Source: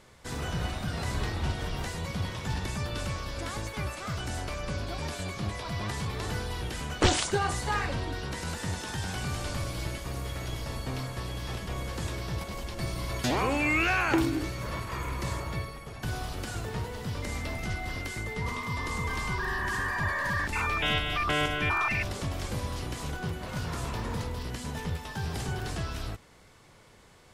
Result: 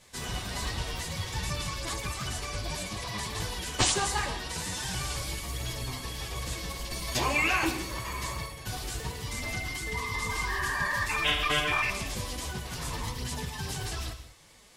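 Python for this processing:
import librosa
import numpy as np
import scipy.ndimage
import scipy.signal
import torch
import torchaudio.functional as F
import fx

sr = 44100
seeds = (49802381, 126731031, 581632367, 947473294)

y = fx.dynamic_eq(x, sr, hz=1000.0, q=2.7, threshold_db=-44.0, ratio=4.0, max_db=4)
y = fx.chorus_voices(y, sr, voices=2, hz=0.71, base_ms=18, depth_ms=2.8, mix_pct=60)
y = fx.stretch_vocoder(y, sr, factor=0.54)
y = fx.high_shelf(y, sr, hz=2400.0, db=12.0)
y = fx.notch(y, sr, hz=1400.0, q=10.0)
y = fx.rev_gated(y, sr, seeds[0], gate_ms=220, shape='flat', drr_db=9.0)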